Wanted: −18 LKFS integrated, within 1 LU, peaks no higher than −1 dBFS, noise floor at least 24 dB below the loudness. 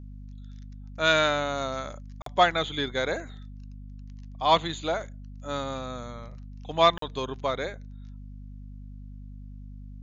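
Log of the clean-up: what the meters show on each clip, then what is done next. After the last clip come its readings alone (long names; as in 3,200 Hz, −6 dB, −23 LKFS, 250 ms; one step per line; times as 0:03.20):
number of dropouts 2; longest dropout 43 ms; mains hum 50 Hz; hum harmonics up to 250 Hz; level of the hum −39 dBFS; integrated loudness −27.0 LKFS; sample peak −8.5 dBFS; target loudness −18.0 LKFS
→ repair the gap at 0:02.22/0:06.98, 43 ms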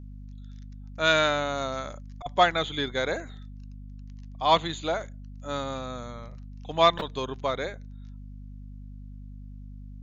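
number of dropouts 0; mains hum 50 Hz; hum harmonics up to 250 Hz; level of the hum −39 dBFS
→ hum removal 50 Hz, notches 5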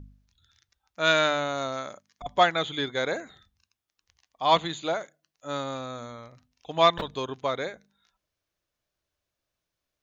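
mains hum none found; integrated loudness −27.0 LKFS; sample peak −8.5 dBFS; target loudness −18.0 LKFS
→ level +9 dB
brickwall limiter −1 dBFS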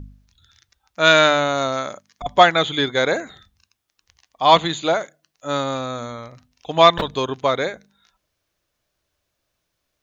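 integrated loudness −18.0 LKFS; sample peak −1.0 dBFS; background noise floor −76 dBFS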